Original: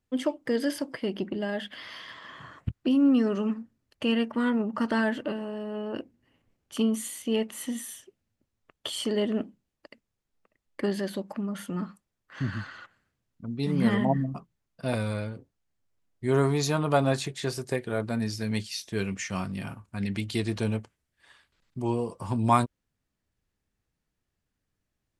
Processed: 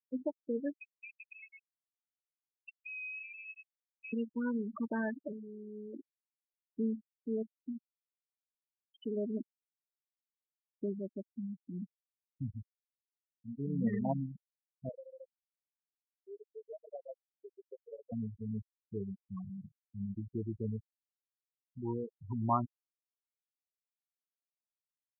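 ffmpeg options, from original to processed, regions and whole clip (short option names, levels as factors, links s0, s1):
-filter_complex "[0:a]asettb=1/sr,asplit=3[s0][s1][s2];[s0]atrim=end=0.814[s3];[s1]atrim=start=0.81:end=4.13,asetpts=PTS-STARTPTS,afade=t=in:d=0.004:c=qsin,afade=t=out:st=3.316:d=0.004:c=qsin,highpass=60,acompressor=threshold=0.0224:ratio=3:attack=3.2:release=140:knee=1:detection=peak,lowpass=f=2400:t=q:w=0.5098,lowpass=f=2400:t=q:w=0.6013,lowpass=f=2400:t=q:w=0.9,lowpass=f=2400:t=q:w=2.563,afreqshift=-2800[s4];[s2]atrim=start=4.126[s5];[s3][s4]acrossfade=d=0.004:c1=hsin:c2=qsin[s6];[s6][s5]acrossfade=d=0.004:c1=qsin:c2=hsin,asettb=1/sr,asplit=3[s7][s8][s9];[s7]atrim=end=14.894[s10];[s8]atrim=start=14.89:end=18.12,asetpts=PTS-STARTPTS,afade=t=in:d=0.004:c=qsin,afade=t=out:st=3.226:d=0.004:c=qsin,acompressor=threshold=0.0316:ratio=20:attack=3.2:release=140:knee=1:detection=peak,highpass=f=500:t=q:w=3.1,flanger=delay=6:depth=7.3:regen=-38:speed=1.9:shape=triangular[s11];[s9]atrim=start=18.116[s12];[s10][s11]acrossfade=d=0.004:c1=hsin:c2=qsin[s13];[s13][s12]acrossfade=d=0.004:c1=qsin:c2=hsin,afftfilt=real='re*gte(hypot(re,im),0.126)':imag='im*gte(hypot(re,im),0.126)':win_size=1024:overlap=0.75,lowpass=2500,afftfilt=real='re*gte(hypot(re,im),0.0562)':imag='im*gte(hypot(re,im),0.0562)':win_size=1024:overlap=0.75,volume=0.376"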